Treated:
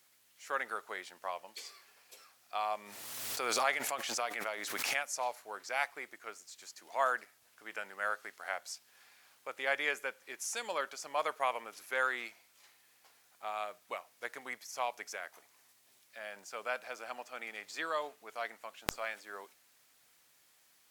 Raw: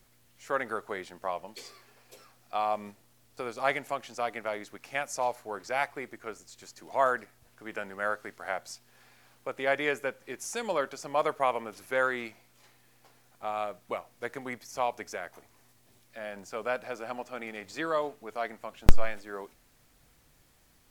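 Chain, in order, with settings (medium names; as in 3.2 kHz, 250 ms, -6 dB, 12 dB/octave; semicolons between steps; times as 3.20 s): high-pass 1.4 kHz 6 dB/octave; 2.73–5.03 s: swell ahead of each attack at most 29 dB/s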